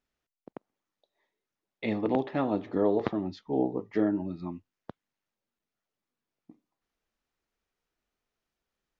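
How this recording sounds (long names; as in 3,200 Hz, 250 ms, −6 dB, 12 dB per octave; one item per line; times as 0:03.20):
background noise floor −90 dBFS
spectral slope −5.5 dB per octave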